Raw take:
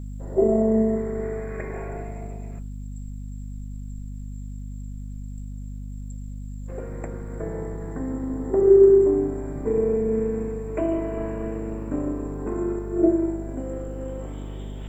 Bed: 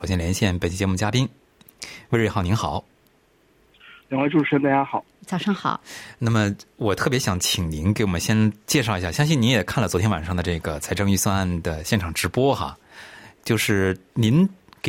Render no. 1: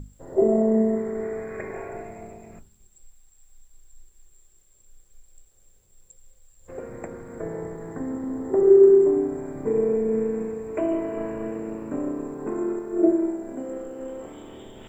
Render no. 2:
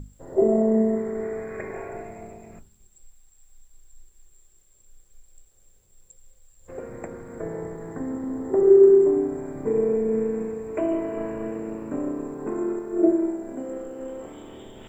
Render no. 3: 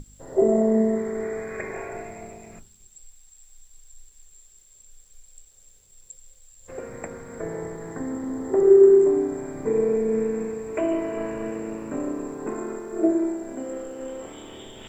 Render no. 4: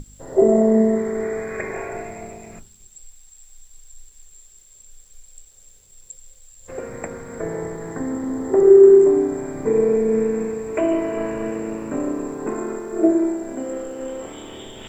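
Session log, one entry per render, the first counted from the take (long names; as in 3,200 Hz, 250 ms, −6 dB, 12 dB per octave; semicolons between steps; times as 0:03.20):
mains-hum notches 50/100/150/200/250/300 Hz
no processing that can be heard
parametric band 5,200 Hz +9.5 dB 2.7 octaves; mains-hum notches 50/100/150/200/250/300/350 Hz
level +4.5 dB; brickwall limiter −2 dBFS, peak gain reduction 1.5 dB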